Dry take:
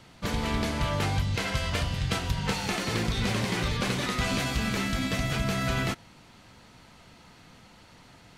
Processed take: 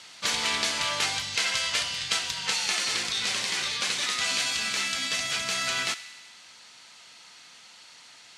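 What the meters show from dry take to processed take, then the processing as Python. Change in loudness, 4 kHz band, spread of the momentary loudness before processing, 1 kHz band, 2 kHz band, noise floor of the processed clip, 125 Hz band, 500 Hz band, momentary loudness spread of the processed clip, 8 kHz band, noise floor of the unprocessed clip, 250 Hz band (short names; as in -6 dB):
+2.5 dB, +8.0 dB, 2 LU, -1.5 dB, +3.5 dB, -51 dBFS, -20.5 dB, -7.0 dB, 2 LU, +9.5 dB, -54 dBFS, -15.0 dB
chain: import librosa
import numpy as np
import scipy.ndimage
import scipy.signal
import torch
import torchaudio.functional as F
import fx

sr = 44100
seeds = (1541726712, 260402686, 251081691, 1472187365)

y = fx.weighting(x, sr, curve='ITU-R 468')
y = fx.rider(y, sr, range_db=10, speed_s=2.0)
y = fx.echo_wet_highpass(y, sr, ms=64, feedback_pct=73, hz=1400.0, wet_db=-15)
y = y * 10.0 ** (-2.5 / 20.0)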